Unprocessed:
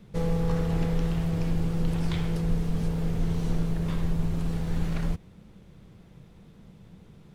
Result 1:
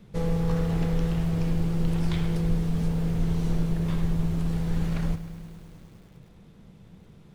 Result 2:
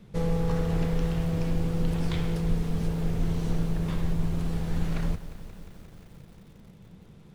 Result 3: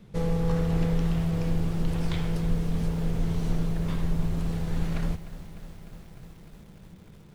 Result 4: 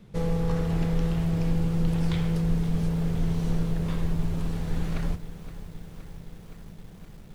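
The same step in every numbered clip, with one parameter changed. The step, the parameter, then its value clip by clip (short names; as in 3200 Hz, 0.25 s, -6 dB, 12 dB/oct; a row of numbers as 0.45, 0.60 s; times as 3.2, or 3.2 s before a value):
lo-fi delay, time: 0.103, 0.177, 0.301, 0.519 s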